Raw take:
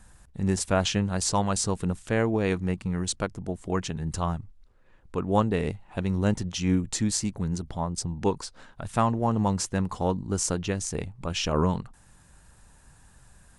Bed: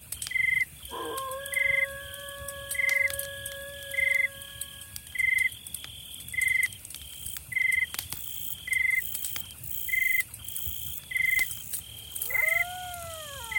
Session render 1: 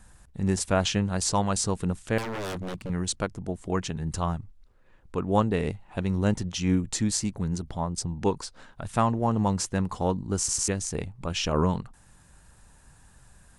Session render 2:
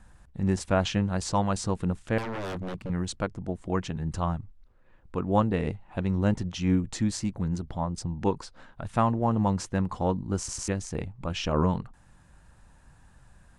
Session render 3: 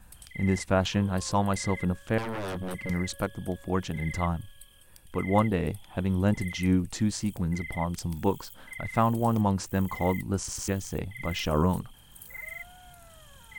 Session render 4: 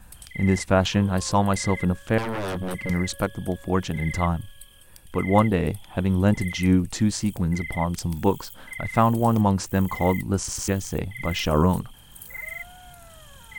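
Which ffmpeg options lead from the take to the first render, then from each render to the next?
ffmpeg -i in.wav -filter_complex "[0:a]asettb=1/sr,asplit=3[link_01][link_02][link_03];[link_01]atrim=end=2.184[link_04];[link_02]atrim=start=2.18:end=2.9,asetpts=PTS-STARTPTS,afade=type=in:duration=0.004:curve=qsin,afade=type=out:start_time=0.716:duration=0.004:curve=qsin,aeval=exprs='0.0398*(abs(mod(val(0)/0.0398+3,4)-2)-1)':channel_layout=same[link_05];[link_03]atrim=start=2.896[link_06];[link_04][link_05]acrossfade=duration=0.004:curve1=hsin:curve2=qsin[link_07];[link_07][link_06]acrossfade=duration=0.004:curve1=qsin:curve2=hsin,asplit=4[link_08][link_09][link_10][link_11];[link_08]atrim=end=10.482[link_12];[link_09]atrim=start=10.378:end=10.482[link_13];[link_10]atrim=start=10.378:end=10.482[link_14];[link_11]atrim=start=10.678[link_15];[link_12][link_13]acrossfade=duration=0.004:curve1=hsin:curve2=hsin[link_16];[link_16][link_14]acrossfade=duration=0.004:curve1=hsin:curve2=hsin[link_17];[link_17][link_15]acrossfade=duration=0.004:curve1=hsin:curve2=hsin" out.wav
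ffmpeg -i in.wav -af "lowpass=frequency=2700:poles=1,bandreject=frequency=420:width=12" out.wav
ffmpeg -i in.wav -i bed.wav -filter_complex "[1:a]volume=-15dB[link_01];[0:a][link_01]amix=inputs=2:normalize=0" out.wav
ffmpeg -i in.wav -af "volume=5dB" out.wav

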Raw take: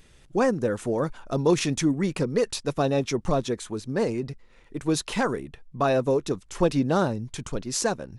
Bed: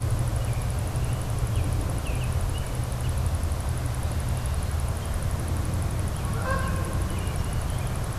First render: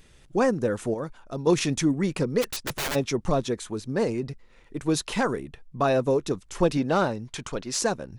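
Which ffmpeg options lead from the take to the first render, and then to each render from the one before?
ffmpeg -i in.wav -filter_complex "[0:a]asplit=3[link_01][link_02][link_03];[link_01]afade=type=out:start_time=2.41:duration=0.02[link_04];[link_02]aeval=exprs='(mod(15.8*val(0)+1,2)-1)/15.8':channel_layout=same,afade=type=in:start_time=2.41:duration=0.02,afade=type=out:start_time=2.94:duration=0.02[link_05];[link_03]afade=type=in:start_time=2.94:duration=0.02[link_06];[link_04][link_05][link_06]amix=inputs=3:normalize=0,asettb=1/sr,asplit=3[link_07][link_08][link_09];[link_07]atrim=end=6.774[link_10];[link_08]atrim=start=6.77:end=7.79,asetpts=PTS-STARTPTS,afade=type=in:duration=0.004:curve=qsin,afade=type=out:start_time=1.016:duration=0.004:curve=qsin,asplit=2[link_11][link_12];[link_12]highpass=frequency=720:poles=1,volume=9dB,asoftclip=type=tanh:threshold=-11.5dB[link_13];[link_11][link_13]amix=inputs=2:normalize=0,lowpass=frequency=4300:poles=1,volume=-6dB[link_14];[link_09]atrim=start=7.786[link_15];[link_10][link_14]acrossfade=duration=0.004:curve1=hsin:curve2=qsin[link_16];[link_16][link_15]acrossfade=duration=0.004:curve1=qsin:curve2=hsin,asplit=3[link_17][link_18][link_19];[link_17]atrim=end=0.942[link_20];[link_18]atrim=start=0.938:end=1.472,asetpts=PTS-STARTPTS,volume=-6.5dB[link_21];[link_19]atrim=start=1.468[link_22];[link_20][link_21]acrossfade=duration=0.004:curve1=hsin:curve2=hsin[link_23];[link_23][link_22]acrossfade=duration=0.004:curve1=hsin:curve2=hsin" out.wav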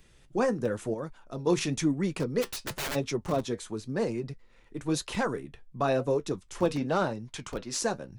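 ffmpeg -i in.wav -filter_complex "[0:a]flanger=delay=5.6:depth=3.8:regen=-66:speed=0.97:shape=sinusoidal,acrossover=split=120|3700[link_01][link_02][link_03];[link_01]aeval=exprs='(mod(66.8*val(0)+1,2)-1)/66.8':channel_layout=same[link_04];[link_04][link_02][link_03]amix=inputs=3:normalize=0" out.wav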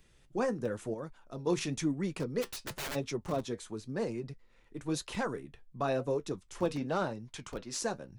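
ffmpeg -i in.wav -af "volume=-5dB" out.wav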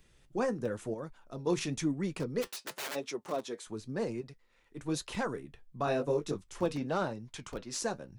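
ffmpeg -i in.wav -filter_complex "[0:a]asettb=1/sr,asplit=3[link_01][link_02][link_03];[link_01]atrim=end=2.474[link_04];[link_02]atrim=start=2.47:end=3.67,asetpts=PTS-STARTPTS,afade=type=in:duration=0.004:curve=qsin,afade=type=out:start_time=1.196:duration=0.004:curve=qsin,highpass=330[link_05];[link_03]atrim=start=3.666[link_06];[link_04][link_05]acrossfade=duration=0.004:curve1=hsin:curve2=qsin[link_07];[link_07][link_06]acrossfade=duration=0.004:curve1=qsin:curve2=hsin,asettb=1/sr,asplit=3[link_08][link_09][link_10];[link_08]atrim=end=4.214[link_11];[link_09]atrim=start=4.21:end=4.77,asetpts=PTS-STARTPTS,afade=type=in:duration=0.004:curve=qsin,afade=type=out:start_time=0.556:duration=0.004:curve=qsin,lowshelf=frequency=420:gain=-8.5[link_12];[link_10]atrim=start=4.766[link_13];[link_11][link_12]acrossfade=duration=0.004:curve1=hsin:curve2=qsin[link_14];[link_14][link_13]acrossfade=duration=0.004:curve1=qsin:curve2=hsin,asettb=1/sr,asplit=3[link_15][link_16][link_17];[link_15]atrim=end=5.854[link_18];[link_16]atrim=start=5.85:end=6.44,asetpts=PTS-STARTPTS,afade=type=in:duration=0.004:curve=qsin,afade=type=out:start_time=0.586:duration=0.004:curve=qsin,asplit=2[link_19][link_20];[link_20]adelay=20,volume=-3dB[link_21];[link_19][link_21]amix=inputs=2:normalize=0,atrim=end_sample=26019[link_22];[link_17]atrim=start=6.436[link_23];[link_18][link_22]acrossfade=duration=0.004:curve1=hsin:curve2=qsin[link_24];[link_24][link_23]acrossfade=duration=0.004:curve1=qsin:curve2=hsin" out.wav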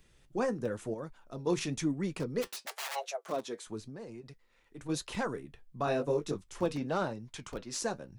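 ffmpeg -i in.wav -filter_complex "[0:a]asplit=3[link_01][link_02][link_03];[link_01]afade=type=out:start_time=2.65:duration=0.02[link_04];[link_02]afreqshift=270,afade=type=in:start_time=2.65:duration=0.02,afade=type=out:start_time=3.28:duration=0.02[link_05];[link_03]afade=type=in:start_time=3.28:duration=0.02[link_06];[link_04][link_05][link_06]amix=inputs=3:normalize=0,asplit=3[link_07][link_08][link_09];[link_07]afade=type=out:start_time=3.87:duration=0.02[link_10];[link_08]acompressor=threshold=-41dB:ratio=10:attack=3.2:release=140:knee=1:detection=peak,afade=type=in:start_time=3.87:duration=0.02,afade=type=out:start_time=4.88:duration=0.02[link_11];[link_09]afade=type=in:start_time=4.88:duration=0.02[link_12];[link_10][link_11][link_12]amix=inputs=3:normalize=0" out.wav

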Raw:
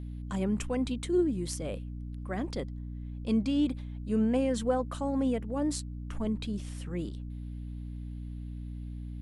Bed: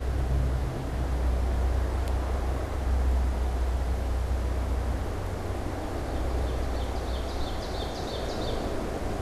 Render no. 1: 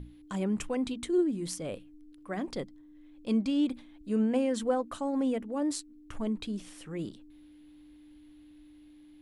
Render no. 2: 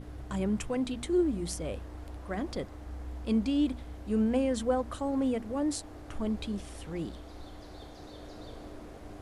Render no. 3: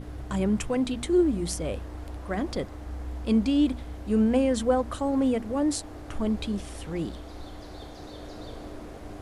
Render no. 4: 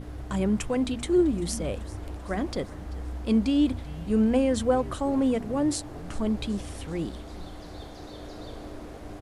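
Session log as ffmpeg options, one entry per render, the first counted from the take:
ffmpeg -i in.wav -af "bandreject=frequency=60:width_type=h:width=6,bandreject=frequency=120:width_type=h:width=6,bandreject=frequency=180:width_type=h:width=6,bandreject=frequency=240:width_type=h:width=6" out.wav
ffmpeg -i in.wav -i bed.wav -filter_complex "[1:a]volume=-15.5dB[link_01];[0:a][link_01]amix=inputs=2:normalize=0" out.wav
ffmpeg -i in.wav -af "volume=5dB" out.wav
ffmpeg -i in.wav -filter_complex "[0:a]asplit=6[link_01][link_02][link_03][link_04][link_05][link_06];[link_02]adelay=388,afreqshift=-130,volume=-19dB[link_07];[link_03]adelay=776,afreqshift=-260,volume=-23.3dB[link_08];[link_04]adelay=1164,afreqshift=-390,volume=-27.6dB[link_09];[link_05]adelay=1552,afreqshift=-520,volume=-31.9dB[link_10];[link_06]adelay=1940,afreqshift=-650,volume=-36.2dB[link_11];[link_01][link_07][link_08][link_09][link_10][link_11]amix=inputs=6:normalize=0" out.wav

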